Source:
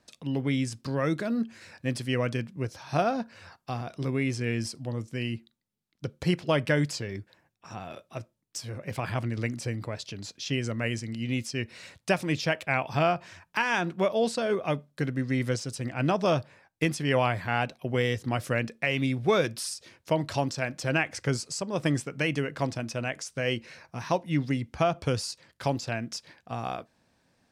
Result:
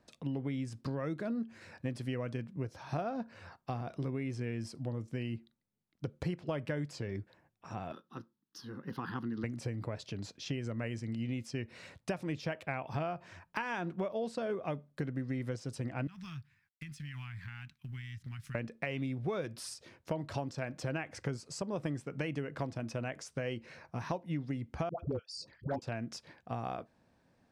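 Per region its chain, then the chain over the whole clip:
0:07.92–0:09.44: low shelf with overshoot 140 Hz −14 dB, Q 1.5 + phaser with its sweep stopped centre 2,300 Hz, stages 6
0:16.07–0:18.55: mu-law and A-law mismatch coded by A + Chebyshev band-stop filter 140–1,900 Hz + downward compressor 5 to 1, threshold −40 dBFS
0:24.89–0:25.82: spectral envelope exaggerated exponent 2 + all-pass dispersion highs, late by 106 ms, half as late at 660 Hz + hard clipping −20 dBFS
whole clip: high-shelf EQ 2,200 Hz −10.5 dB; downward compressor 6 to 1, threshold −33 dBFS

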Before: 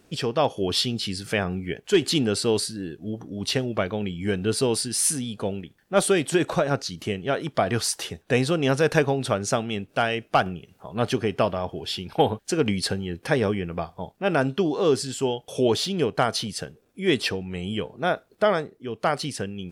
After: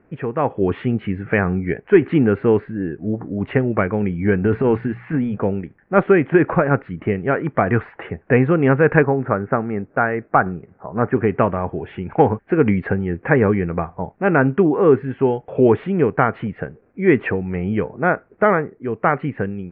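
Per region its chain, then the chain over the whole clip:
0:04.44–0:05.38: transient designer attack −9 dB, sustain +5 dB + mains-hum notches 60/120/180 Hz
0:09.03–0:11.16: low-pass filter 1,900 Hz 24 dB per octave + low-shelf EQ 170 Hz −4.5 dB
whole clip: Butterworth low-pass 2,200 Hz 48 dB per octave; dynamic equaliser 640 Hz, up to −6 dB, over −37 dBFS, Q 2.8; automatic gain control gain up to 7 dB; level +2 dB

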